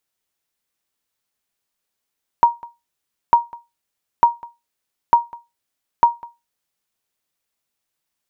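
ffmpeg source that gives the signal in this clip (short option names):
-f lavfi -i "aevalsrc='0.708*(sin(2*PI*943*mod(t,0.9))*exp(-6.91*mod(t,0.9)/0.22)+0.0668*sin(2*PI*943*max(mod(t,0.9)-0.2,0))*exp(-6.91*max(mod(t,0.9)-0.2,0)/0.22))':d=4.5:s=44100"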